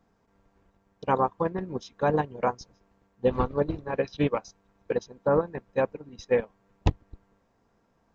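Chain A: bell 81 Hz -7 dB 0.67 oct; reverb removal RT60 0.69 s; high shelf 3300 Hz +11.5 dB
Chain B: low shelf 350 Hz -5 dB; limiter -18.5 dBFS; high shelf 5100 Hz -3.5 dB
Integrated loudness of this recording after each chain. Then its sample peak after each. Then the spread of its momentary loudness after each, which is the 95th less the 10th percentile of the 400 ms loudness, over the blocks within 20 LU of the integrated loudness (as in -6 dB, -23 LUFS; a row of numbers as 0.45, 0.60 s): -28.5, -32.5 LUFS; -10.5, -18.5 dBFS; 10, 8 LU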